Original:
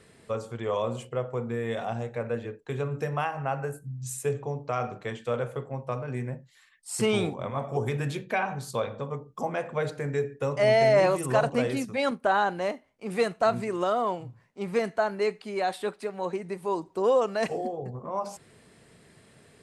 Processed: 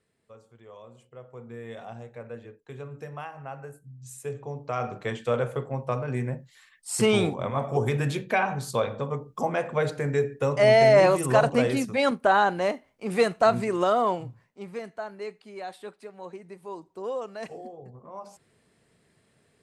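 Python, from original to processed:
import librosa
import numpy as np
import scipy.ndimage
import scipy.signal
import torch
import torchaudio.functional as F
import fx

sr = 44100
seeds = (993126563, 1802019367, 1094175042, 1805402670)

y = fx.gain(x, sr, db=fx.line((0.94, -19.0), (1.58, -9.0), (4.02, -9.0), (5.08, 3.5), (14.23, 3.5), (14.76, -9.5)))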